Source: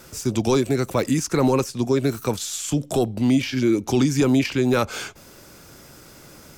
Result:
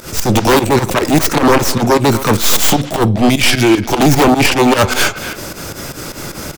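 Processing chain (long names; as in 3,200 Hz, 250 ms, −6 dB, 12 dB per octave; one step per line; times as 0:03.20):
stylus tracing distortion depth 0.26 ms
0:03.28–0:03.84: parametric band 250 Hz −14 dB → −6 dB 2 octaves
in parallel at +2 dB: downward compressor, threshold −24 dBFS, peak gain reduction 10 dB
on the sum: sine wavefolder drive 11 dB, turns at −3.5 dBFS
fake sidechain pumping 152 BPM, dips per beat 2, −20 dB, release 80 ms
far-end echo of a speakerphone 250 ms, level −9 dB
on a send at −18 dB: convolution reverb RT60 0.35 s, pre-delay 3 ms
on the sum: level that may rise only so fast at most 170 dB per second
level −1.5 dB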